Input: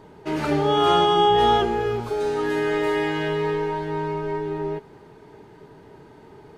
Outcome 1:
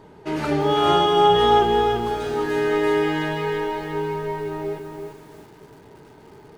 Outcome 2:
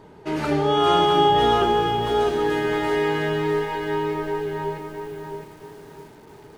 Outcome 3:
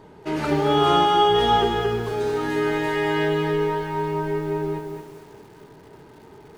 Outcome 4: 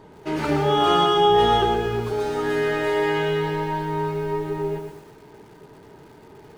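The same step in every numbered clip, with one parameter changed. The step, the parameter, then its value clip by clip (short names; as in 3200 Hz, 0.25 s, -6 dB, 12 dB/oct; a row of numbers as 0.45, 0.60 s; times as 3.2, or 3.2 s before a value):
lo-fi delay, time: 0.342, 0.663, 0.225, 0.121 s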